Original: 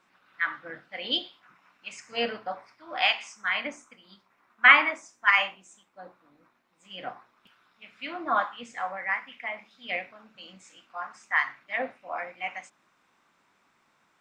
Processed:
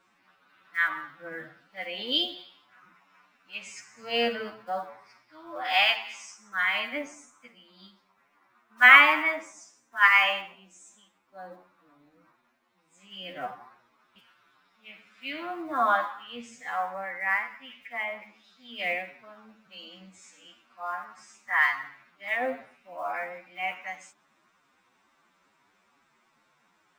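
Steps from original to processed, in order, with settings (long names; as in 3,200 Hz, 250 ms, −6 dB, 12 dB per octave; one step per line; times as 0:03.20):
one scale factor per block 7 bits
phase-vocoder stretch with locked phases 1.9×
level +1 dB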